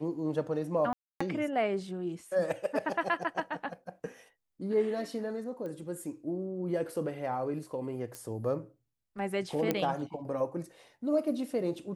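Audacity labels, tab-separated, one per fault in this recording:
0.930000	1.210000	drop-out 275 ms
5.660000	5.660000	click −30 dBFS
8.150000	8.150000	click −24 dBFS
9.710000	9.710000	click −14 dBFS

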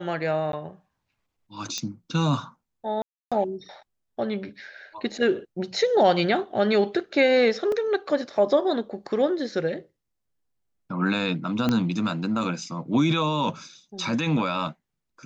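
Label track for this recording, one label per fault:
0.520000	0.530000	drop-out
1.780000	1.780000	click −15 dBFS
3.020000	3.320000	drop-out 296 ms
7.720000	7.720000	drop-out 2.6 ms
11.690000	11.690000	click −11 dBFS

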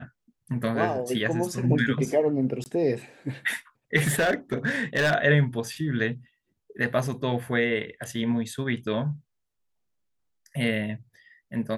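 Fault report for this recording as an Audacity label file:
2.640000	2.660000	drop-out 19 ms
3.960000	5.140000	clipping −18.5 dBFS

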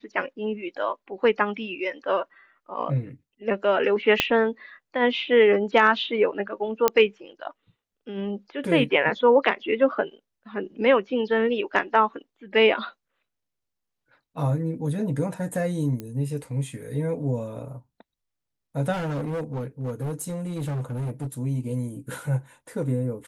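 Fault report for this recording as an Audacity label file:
4.200000	4.200000	click −4 dBFS
6.880000	6.880000	click −4 dBFS
16.000000	16.000000	click −20 dBFS
18.920000	21.270000	clipping −25.5 dBFS

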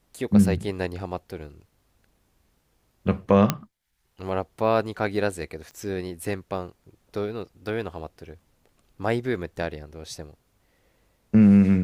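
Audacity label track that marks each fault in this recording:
3.500000	3.500000	click −6 dBFS
5.710000	5.710000	click −31 dBFS

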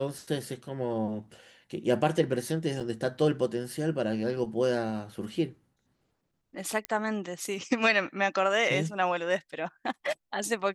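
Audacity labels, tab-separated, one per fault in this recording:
2.800000	2.810000	drop-out 6 ms
6.850000	6.850000	click −16 dBFS

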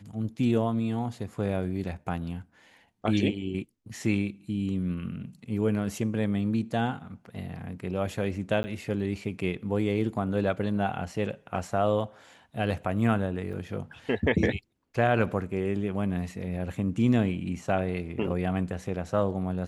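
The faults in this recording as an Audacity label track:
8.630000	8.640000	drop-out 10 ms
13.530000	13.540000	drop-out 5.8 ms

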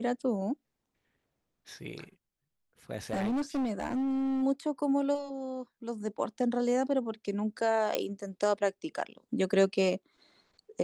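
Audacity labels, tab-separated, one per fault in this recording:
3.110000	4.430000	clipping −27.5 dBFS
7.950000	7.950000	click −13 dBFS

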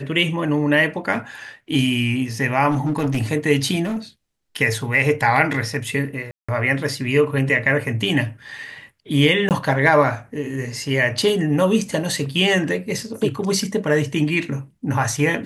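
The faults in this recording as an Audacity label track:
2.700000	3.240000	clipping −16 dBFS
3.840000	3.980000	clipping −21 dBFS
6.310000	6.490000	drop-out 175 ms
9.490000	9.510000	drop-out 18 ms
11.810000	11.810000	drop-out 3.1 ms

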